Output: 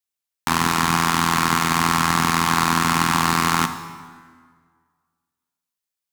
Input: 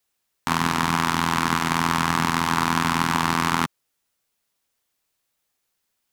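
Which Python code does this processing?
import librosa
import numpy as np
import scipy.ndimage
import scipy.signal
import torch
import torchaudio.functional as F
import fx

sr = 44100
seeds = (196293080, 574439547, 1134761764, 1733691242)

y = 10.0 ** (-13.0 / 20.0) * np.tanh(x / 10.0 ** (-13.0 / 20.0))
y = fx.high_shelf(y, sr, hz=2500.0, db=6.5)
y = fx.power_curve(y, sr, exponent=1.4)
y = fx.rev_plate(y, sr, seeds[0], rt60_s=1.8, hf_ratio=0.7, predelay_ms=0, drr_db=8.5)
y = F.gain(torch.from_numpy(y), 7.0).numpy()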